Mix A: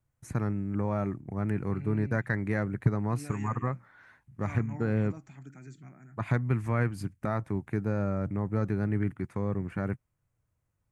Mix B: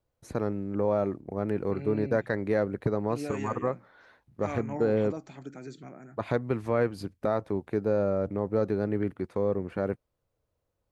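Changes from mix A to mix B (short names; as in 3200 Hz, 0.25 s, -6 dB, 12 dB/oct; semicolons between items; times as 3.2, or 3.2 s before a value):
second voice +6.0 dB; master: add graphic EQ 125/500/2000/4000/8000 Hz -8/+11/-5/+9/-6 dB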